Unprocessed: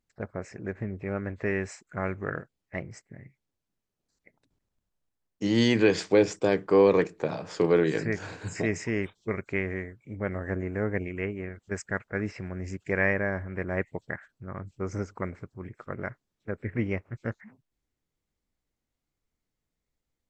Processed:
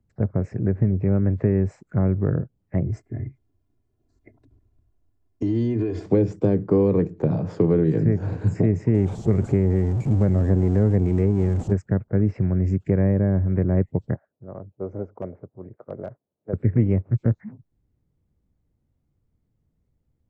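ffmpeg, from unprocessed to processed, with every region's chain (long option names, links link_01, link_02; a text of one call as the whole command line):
ffmpeg -i in.wav -filter_complex "[0:a]asettb=1/sr,asplit=3[link_01][link_02][link_03];[link_01]atrim=end=2.864[link_04];[link_02]atrim=start=2.86:end=6.06,asetpts=PTS-STARTPTS,afade=type=in:duration=0.004:curve=qsin,afade=type=out:start_time=3.196:duration=0.004:curve=qsin,aecho=1:1:2.9:0.98,atrim=end_sample=141120,acompressor=threshold=-33dB:ratio=6:attack=3.2:release=140:knee=1:detection=peak[link_05];[link_03]atrim=start=6.056[link_06];[link_04][link_05]acrossfade=duration=0.004:curve1=hsin:curve2=qsin[link_07];[link_07][link_06]acrossfade=duration=0.004:curve1=qsin:curve2=hsin,asettb=1/sr,asplit=3[link_08][link_09][link_10];[link_08]atrim=end=8.944[link_11];[link_09]atrim=start=8.94:end=11.73,asetpts=PTS-STARTPTS,afade=type=in:duration=0.004:curve=qsin,afade=type=out:start_time=2.786:duration=0.004:curve=qsin,aeval=exprs='val(0)+0.5*0.02*sgn(val(0))':channel_layout=same,lowpass=frequency=7500:width_type=q:width=3.3,equalizer=frequency=770:width=3.8:gain=5[link_12];[link_10]atrim=start=11.726[link_13];[link_11][link_12]acrossfade=duration=0.004:curve1=hsin:curve2=qsin[link_14];[link_14][link_13]acrossfade=duration=0.004:curve1=qsin:curve2=hsin,asettb=1/sr,asplit=3[link_15][link_16][link_17];[link_15]atrim=end=14.144[link_18];[link_16]atrim=start=14.14:end=16.53,asetpts=PTS-STARTPTS,afade=type=in:duration=0.004:curve=qsin,afade=type=out:start_time=2.386:duration=0.004:curve=qsin,aeval=exprs='(mod(8.91*val(0)+1,2)-1)/8.91':channel_layout=same,bandpass=frequency=610:width_type=q:width=2.1[link_19];[link_17]atrim=start=16.526[link_20];[link_18][link_19]acrossfade=duration=0.004:curve1=hsin:curve2=qsin[link_21];[link_21][link_20]acrossfade=duration=0.004:curve1=qsin:curve2=hsin,equalizer=frequency=100:width=0.62:gain=12,acrossover=split=110|450|930[link_22][link_23][link_24][link_25];[link_22]acompressor=threshold=-38dB:ratio=4[link_26];[link_23]acompressor=threshold=-26dB:ratio=4[link_27];[link_24]acompressor=threshold=-38dB:ratio=4[link_28];[link_25]acompressor=threshold=-44dB:ratio=4[link_29];[link_26][link_27][link_28][link_29]amix=inputs=4:normalize=0,tiltshelf=frequency=1300:gain=9" out.wav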